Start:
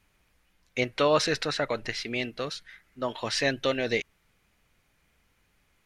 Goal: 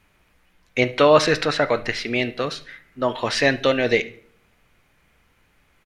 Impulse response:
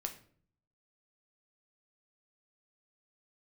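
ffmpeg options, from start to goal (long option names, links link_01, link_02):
-filter_complex "[0:a]aecho=1:1:72|144|216:0.0841|0.0294|0.0103,asplit=2[link_01][link_02];[1:a]atrim=start_sample=2205,lowpass=3700,lowshelf=frequency=160:gain=-7[link_03];[link_02][link_03]afir=irnorm=-1:irlink=0,volume=-1dB[link_04];[link_01][link_04]amix=inputs=2:normalize=0,volume=4dB"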